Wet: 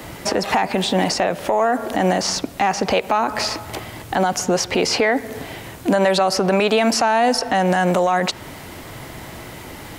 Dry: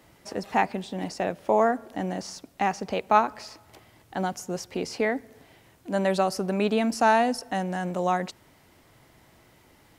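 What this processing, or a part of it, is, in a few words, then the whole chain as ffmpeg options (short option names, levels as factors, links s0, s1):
mastering chain: -filter_complex "[0:a]equalizer=f=5400:t=o:w=0.35:g=-2,acrossover=split=460|5900[s0][s1][s2];[s0]acompressor=threshold=0.0112:ratio=4[s3];[s1]acompressor=threshold=0.0631:ratio=4[s4];[s2]acompressor=threshold=0.00178:ratio=4[s5];[s3][s4][s5]amix=inputs=3:normalize=0,acompressor=threshold=0.0224:ratio=2,asoftclip=type=tanh:threshold=0.0944,alimiter=level_in=31.6:limit=0.891:release=50:level=0:latency=1,volume=0.398"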